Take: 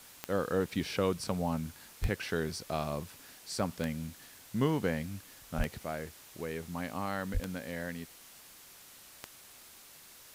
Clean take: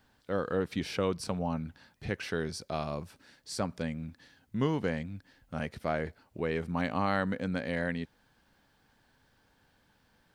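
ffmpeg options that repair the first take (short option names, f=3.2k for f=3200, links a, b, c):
-filter_complex "[0:a]adeclick=t=4,asplit=3[a][b][c];[a]afade=t=out:st=2.01:d=0.02[d];[b]highpass=f=140:w=0.5412,highpass=f=140:w=1.3066,afade=t=in:st=2.01:d=0.02,afade=t=out:st=2.13:d=0.02[e];[c]afade=t=in:st=2.13:d=0.02[f];[d][e][f]amix=inputs=3:normalize=0,asplit=3[g][h][i];[g]afade=t=out:st=5.57:d=0.02[j];[h]highpass=f=140:w=0.5412,highpass=f=140:w=1.3066,afade=t=in:st=5.57:d=0.02,afade=t=out:st=5.69:d=0.02[k];[i]afade=t=in:st=5.69:d=0.02[l];[j][k][l]amix=inputs=3:normalize=0,asplit=3[m][n][o];[m]afade=t=out:st=7.33:d=0.02[p];[n]highpass=f=140:w=0.5412,highpass=f=140:w=1.3066,afade=t=in:st=7.33:d=0.02,afade=t=out:st=7.45:d=0.02[q];[o]afade=t=in:st=7.45:d=0.02[r];[p][q][r]amix=inputs=3:normalize=0,afwtdn=0.0022,asetnsamples=n=441:p=0,asendcmd='5.83 volume volume 6.5dB',volume=0dB"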